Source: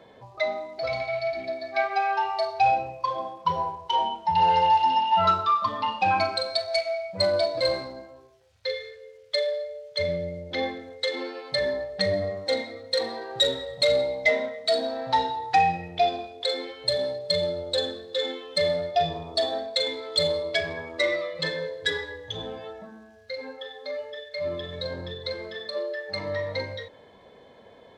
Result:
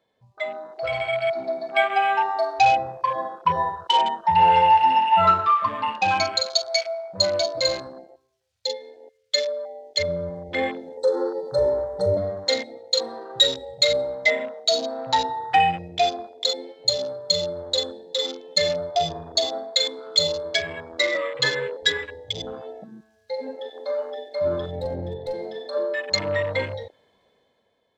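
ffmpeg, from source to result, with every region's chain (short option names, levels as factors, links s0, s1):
-filter_complex "[0:a]asettb=1/sr,asplit=3[s0][s1][s2];[s0]atrim=end=10.974[s3];[s1]atrim=start=10.97:end=12.17,asetpts=PTS-STARTPTS,afade=t=in:d=0.004:c=qsin,afade=t=out:st=1.196:d=0.004:c=qsin,asuperstop=centerf=2500:order=4:qfactor=0.56,aecho=1:1:2.2:0.93,atrim=end_sample=52920[s4];[s2]atrim=start=12.166[s5];[s3][s4]acrossfade=d=0.004:c1=hsin:c2=qsin[s6];[s6][s5]acrossfade=d=0.004:c1=qsin:c2=hsin,asettb=1/sr,asplit=3[s7][s8][s9];[s7]atrim=end=21.154[s10];[s8]atrim=start=21.15:end=21.77,asetpts=PTS-STARTPTS,afade=t=in:d=0.004:c=qsin,afade=t=out:st=0.616:d=0.004:c=qsin,equalizer=f=1200:t=o:w=1.7:g=7,afreqshift=-28[s11];[s9]atrim=start=21.766[s12];[s10][s11]acrossfade=d=0.004:c1=hsin:c2=qsin[s13];[s13][s12]acrossfade=d=0.004:c1=qsin:c2=hsin,asettb=1/sr,asplit=3[s14][s15][s16];[s14]atrim=end=24.714[s17];[s15]atrim=start=24.71:end=25.34,asetpts=PTS-STARTPTS,afade=t=in:d=0.004:c=qsin,afade=t=out:st=0.626:d=0.004:c=qsin,lowpass=f=1500:p=1,aeval=exprs='clip(val(0),-1,0.0266)':c=same[s18];[s16]atrim=start=25.336[s19];[s17][s18]acrossfade=d=0.004:c1=hsin:c2=qsin[s20];[s20][s19]acrossfade=d=0.004:c1=qsin:c2=hsin,afwtdn=0.0178,highshelf=f=3000:g=10.5,dynaudnorm=f=130:g=13:m=3.76,volume=0.562"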